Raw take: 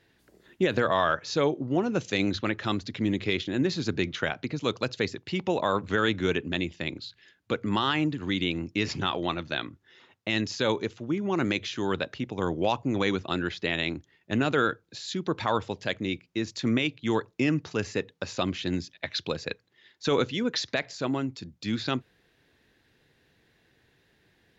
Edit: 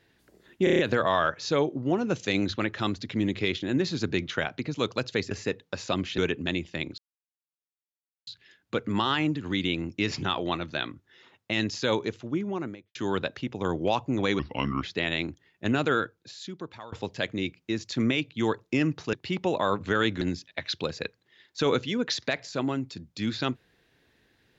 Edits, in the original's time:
0:00.64: stutter 0.03 s, 6 plays
0:05.16–0:06.24: swap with 0:17.80–0:18.67
0:07.04: splice in silence 1.29 s
0:11.05–0:11.72: fade out and dull
0:13.16–0:13.50: play speed 77%
0:14.50–0:15.59: fade out, to −23.5 dB

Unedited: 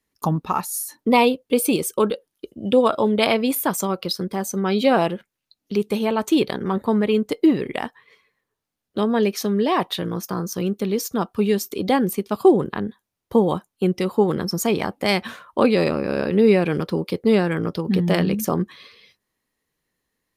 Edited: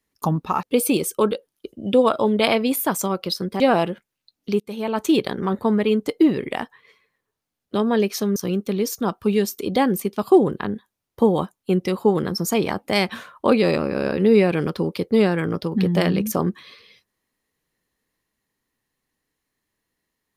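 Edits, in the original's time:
0:00.63–0:01.42: remove
0:04.39–0:04.83: remove
0:05.83–0:06.26: fade in, from −19.5 dB
0:09.59–0:10.49: remove

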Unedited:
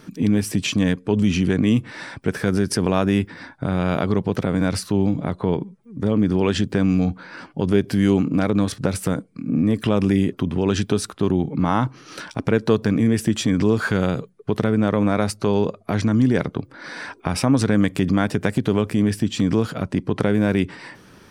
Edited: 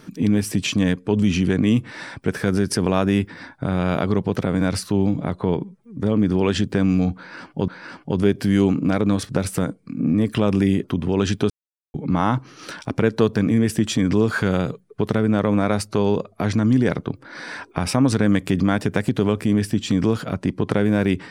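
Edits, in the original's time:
0:07.17–0:07.68: repeat, 2 plays
0:10.99–0:11.43: silence

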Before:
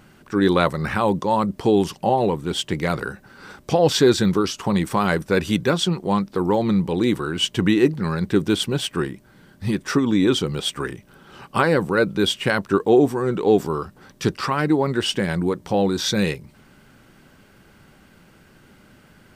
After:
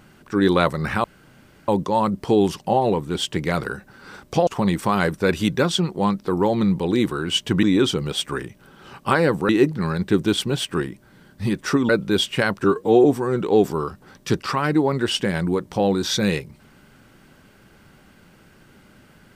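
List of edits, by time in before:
0:01.04: splice in room tone 0.64 s
0:03.83–0:04.55: remove
0:10.11–0:11.97: move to 0:07.71
0:12.72–0:12.99: time-stretch 1.5×

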